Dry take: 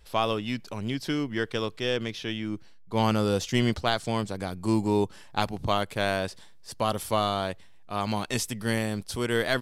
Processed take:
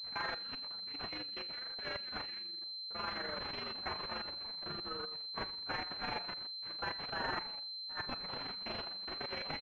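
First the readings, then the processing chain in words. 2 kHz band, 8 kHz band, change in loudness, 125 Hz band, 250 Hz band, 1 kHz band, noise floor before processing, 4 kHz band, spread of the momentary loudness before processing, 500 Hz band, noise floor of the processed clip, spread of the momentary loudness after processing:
-9.5 dB, under -30 dB, -11.0 dB, -23.5 dB, -22.5 dB, -12.5 dB, -48 dBFS, -3.5 dB, 8 LU, -19.0 dB, -45 dBFS, 3 LU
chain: inharmonic rescaling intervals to 124%; bell 620 Hz -3 dB 0.77 oct; speakerphone echo 0.1 s, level -12 dB; Schroeder reverb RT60 0.35 s, combs from 28 ms, DRR 15.5 dB; level quantiser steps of 15 dB; de-hum 177.8 Hz, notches 32; de-esser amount 100%; AM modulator 24 Hz, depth 35%; differentiator; resonator 92 Hz, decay 0.48 s, harmonics all, mix 40%; pulse-width modulation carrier 4100 Hz; gain +15 dB

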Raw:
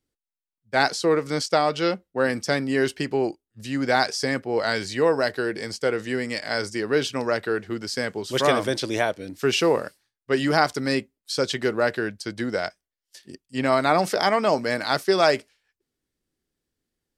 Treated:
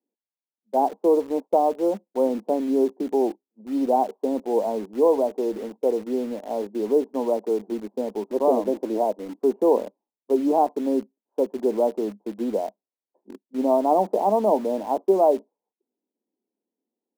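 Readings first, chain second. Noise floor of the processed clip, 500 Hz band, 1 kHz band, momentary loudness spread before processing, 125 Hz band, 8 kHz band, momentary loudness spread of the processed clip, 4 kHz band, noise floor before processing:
under -85 dBFS, +2.0 dB, +0.5 dB, 8 LU, under -10 dB, under -10 dB, 9 LU, under -20 dB, under -85 dBFS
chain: Chebyshev band-pass 200–980 Hz, order 5; in parallel at -10 dB: bit-crush 6-bit

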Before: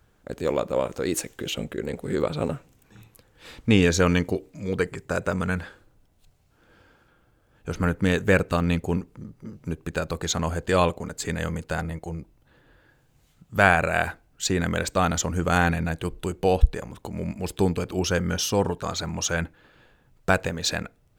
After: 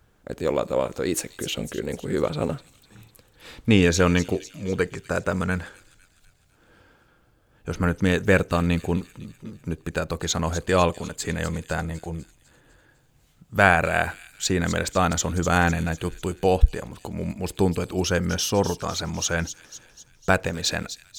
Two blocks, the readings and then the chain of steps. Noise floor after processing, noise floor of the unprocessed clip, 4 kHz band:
-61 dBFS, -63 dBFS, +1.5 dB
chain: thin delay 0.251 s, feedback 54%, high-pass 4200 Hz, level -9 dB; gain +1 dB

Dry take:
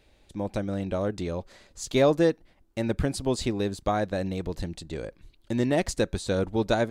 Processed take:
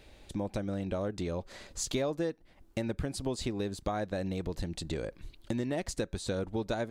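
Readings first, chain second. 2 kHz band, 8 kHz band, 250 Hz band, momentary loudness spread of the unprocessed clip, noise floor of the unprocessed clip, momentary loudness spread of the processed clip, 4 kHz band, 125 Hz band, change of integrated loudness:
-8.0 dB, -2.0 dB, -7.0 dB, 14 LU, -62 dBFS, 6 LU, -5.0 dB, -6.0 dB, -7.5 dB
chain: compressor 4:1, threshold -38 dBFS, peak gain reduction 18 dB; gain +5.5 dB

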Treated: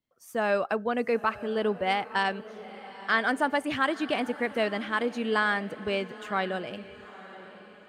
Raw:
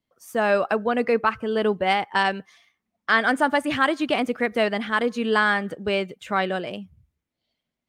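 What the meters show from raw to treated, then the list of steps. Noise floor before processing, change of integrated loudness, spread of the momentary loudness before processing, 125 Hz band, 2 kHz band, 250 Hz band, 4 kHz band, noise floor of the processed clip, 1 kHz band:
-84 dBFS, -5.5 dB, 7 LU, -5.5 dB, -5.5 dB, -5.5 dB, -5.5 dB, -52 dBFS, -5.5 dB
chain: diffused feedback echo 0.919 s, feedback 42%, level -16 dB; gain -5.5 dB

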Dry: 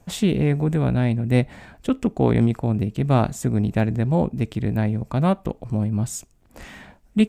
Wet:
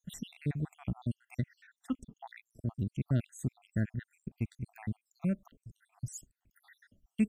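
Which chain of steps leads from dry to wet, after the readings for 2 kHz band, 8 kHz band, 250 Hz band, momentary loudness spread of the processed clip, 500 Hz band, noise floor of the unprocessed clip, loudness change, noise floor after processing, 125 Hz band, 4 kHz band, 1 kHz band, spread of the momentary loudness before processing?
-16.0 dB, -14.0 dB, -15.5 dB, 16 LU, -23.5 dB, -56 dBFS, -16.0 dB, under -85 dBFS, -15.0 dB, under -15 dB, -24.5 dB, 8 LU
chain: random spectral dropouts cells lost 75%; graphic EQ 500/1000/4000 Hz -11/-5/-6 dB; gain -8.5 dB

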